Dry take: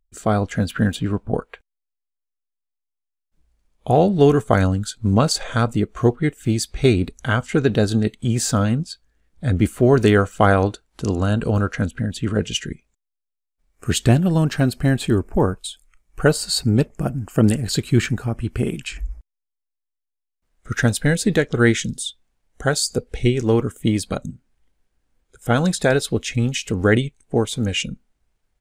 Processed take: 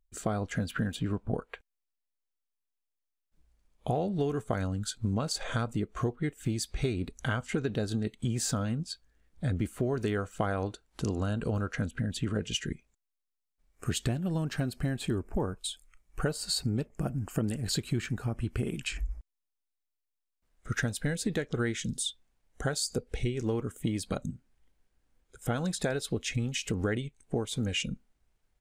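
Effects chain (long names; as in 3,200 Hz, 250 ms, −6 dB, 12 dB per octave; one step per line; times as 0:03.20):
downward compressor 6 to 1, threshold −24 dBFS, peak gain reduction 14.5 dB
level −3.5 dB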